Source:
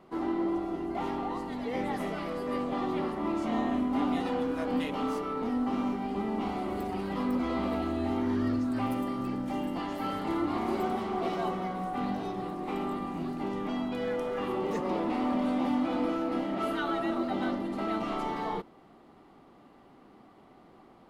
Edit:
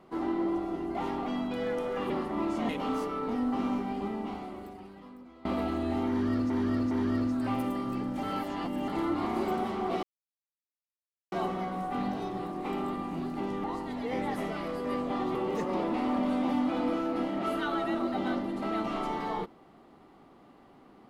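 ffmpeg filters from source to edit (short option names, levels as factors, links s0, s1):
-filter_complex "[0:a]asplit=12[s0][s1][s2][s3][s4][s5][s6][s7][s8][s9][s10][s11];[s0]atrim=end=1.262[s12];[s1]atrim=start=13.668:end=14.512[s13];[s2]atrim=start=2.968:end=3.562[s14];[s3]atrim=start=4.828:end=7.59,asetpts=PTS-STARTPTS,afade=t=out:st=1.212:d=1.55:c=qua:silence=0.0749894[s15];[s4]atrim=start=7.59:end=8.642,asetpts=PTS-STARTPTS,afade=t=in:d=0.004:c=hsin:silence=0.0749894[s16];[s5]atrim=start=8.228:end=8.642[s17];[s6]atrim=start=8.228:end=9.552[s18];[s7]atrim=start=9.548:end=10.202,asetpts=PTS-STARTPTS,areverse[s19];[s8]atrim=start=10.198:end=11.35,asetpts=PTS-STARTPTS,afade=t=out:st=1.148:d=0.004:c=hsin,apad=pad_dur=1.29[s20];[s9]atrim=start=11.35:end=13.672,asetpts=PTS-STARTPTS,afade=t=in:d=0.004:c=hsin[s21];[s10]atrim=start=1.258:end=2.972[s22];[s11]atrim=start=14.508[s23];[s12][s13]acrossfade=d=0.004:c1=hsin:c2=hsin[s24];[s24][s14]acrossfade=d=0.004:c1=hsin:c2=hsin[s25];[s15][s16]concat=n=2:v=0:a=1[s26];[s25][s26]acrossfade=d=0.004:c1=hsin:c2=hsin[s27];[s27][s17]acrossfade=d=0.004:c1=hsin:c2=hsin[s28];[s28][s18]acrossfade=d=0.004:c1=hsin:c2=hsin[s29];[s29][s19]acrossfade=d=0.004:c1=hsin:c2=hsin[s30];[s20][s21]concat=n=2:v=0:a=1[s31];[s30][s31]acrossfade=d=0.004:c1=hsin:c2=hsin[s32];[s32][s22]acrossfade=d=0.004:c1=hsin:c2=hsin[s33];[s33][s23]acrossfade=d=0.004:c1=hsin:c2=hsin"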